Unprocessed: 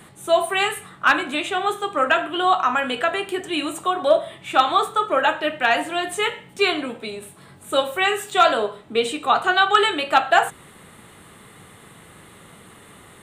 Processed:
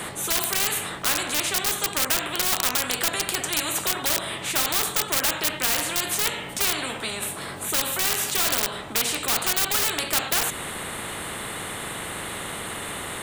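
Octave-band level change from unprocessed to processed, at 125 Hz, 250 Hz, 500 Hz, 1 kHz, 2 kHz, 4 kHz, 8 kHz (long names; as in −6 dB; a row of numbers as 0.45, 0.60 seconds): +7.0, −6.0, −11.5, −11.0, −5.5, +0.5, +13.5 decibels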